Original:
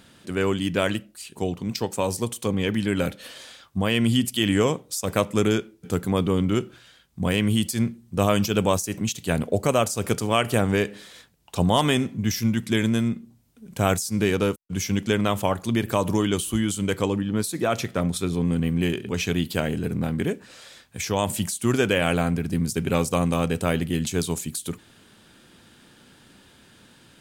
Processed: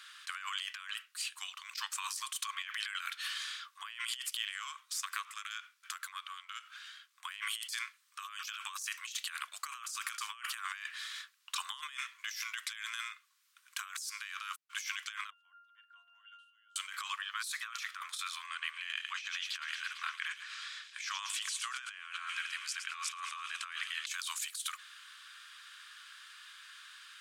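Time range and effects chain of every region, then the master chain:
0:04.27–0:07.23: gain on one half-wave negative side −3 dB + downward compressor 16 to 1, threshold −29 dBFS
0:15.30–0:16.76: resonances in every octave F, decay 0.72 s + multiband upward and downward expander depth 100%
0:18.46–0:24.07: high-frequency loss of the air 60 metres + delay with a high-pass on its return 112 ms, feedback 76%, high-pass 3,100 Hz, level −10.5 dB
whole clip: Chebyshev high-pass filter 1,100 Hz, order 6; high-shelf EQ 7,200 Hz −9.5 dB; compressor whose output falls as the input rises −41 dBFS, ratio −1

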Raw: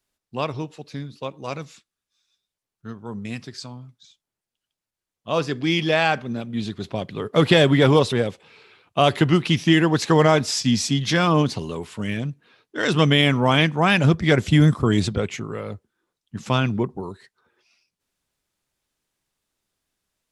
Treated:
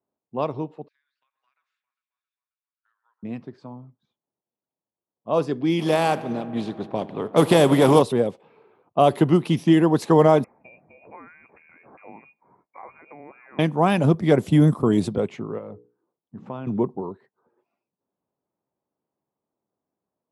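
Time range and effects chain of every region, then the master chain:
0:00.88–0:03.23: Chebyshev high-pass filter 1,600 Hz, order 4 + downward compressor 10 to 1, threshold −52 dBFS + delay that swaps between a low-pass and a high-pass 134 ms, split 2,500 Hz, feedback 75%, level −11.5 dB
0:05.79–0:08.01: compressing power law on the bin magnitudes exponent 0.7 + feedback echo with a low-pass in the loop 82 ms, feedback 84%, low-pass 4,700 Hz, level −19 dB
0:10.44–0:13.59: spectral tilt +1.5 dB per octave + downward compressor 12 to 1, threshold −33 dBFS + voice inversion scrambler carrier 2,600 Hz
0:15.58–0:16.67: mains-hum notches 60/120/180/240/300/360/420/480 Hz + downward compressor 2 to 1, threshold −36 dBFS
whole clip: low-pass that shuts in the quiet parts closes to 1,200 Hz, open at −16.5 dBFS; high-pass filter 170 Hz 12 dB per octave; flat-topped bell 3,200 Hz −12 dB 2.8 octaves; level +2 dB

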